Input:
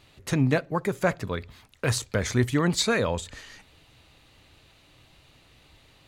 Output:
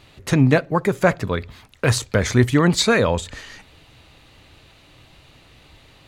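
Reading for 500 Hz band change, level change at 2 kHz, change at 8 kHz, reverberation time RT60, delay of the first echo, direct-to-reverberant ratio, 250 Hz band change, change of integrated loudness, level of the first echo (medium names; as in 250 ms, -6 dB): +7.5 dB, +7.0 dB, +4.5 dB, no reverb, no echo, no reverb, +7.5 dB, +7.0 dB, no echo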